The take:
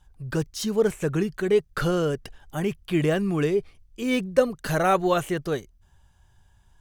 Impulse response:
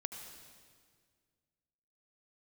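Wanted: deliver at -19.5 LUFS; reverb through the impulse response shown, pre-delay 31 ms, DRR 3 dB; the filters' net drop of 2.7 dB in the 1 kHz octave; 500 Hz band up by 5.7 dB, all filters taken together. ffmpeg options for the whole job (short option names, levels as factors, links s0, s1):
-filter_complex "[0:a]equalizer=f=500:t=o:g=8.5,equalizer=f=1000:t=o:g=-8.5,asplit=2[s0][s1];[1:a]atrim=start_sample=2205,adelay=31[s2];[s1][s2]afir=irnorm=-1:irlink=0,volume=0.794[s3];[s0][s3]amix=inputs=2:normalize=0"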